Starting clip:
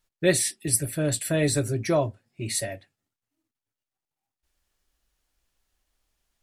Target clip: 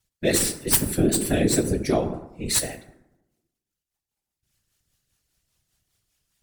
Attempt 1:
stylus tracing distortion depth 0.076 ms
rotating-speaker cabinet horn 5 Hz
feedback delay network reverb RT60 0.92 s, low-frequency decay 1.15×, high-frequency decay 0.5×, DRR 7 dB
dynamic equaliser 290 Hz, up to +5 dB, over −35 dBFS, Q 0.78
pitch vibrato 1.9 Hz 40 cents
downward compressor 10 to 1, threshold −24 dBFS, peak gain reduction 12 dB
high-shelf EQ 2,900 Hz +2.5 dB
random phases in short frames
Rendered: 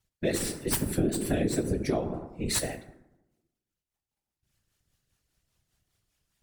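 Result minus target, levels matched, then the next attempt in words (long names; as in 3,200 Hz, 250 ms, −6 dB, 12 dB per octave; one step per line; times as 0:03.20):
downward compressor: peak gain reduction +6.5 dB; 8,000 Hz band −2.5 dB
stylus tracing distortion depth 0.076 ms
rotating-speaker cabinet horn 5 Hz
feedback delay network reverb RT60 0.92 s, low-frequency decay 1.15×, high-frequency decay 0.5×, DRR 7 dB
dynamic equaliser 290 Hz, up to +5 dB, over −35 dBFS, Q 0.78
pitch vibrato 1.9 Hz 40 cents
downward compressor 10 to 1, threshold −16.5 dBFS, peak gain reduction 5.5 dB
high-shelf EQ 2,900 Hz +9 dB
random phases in short frames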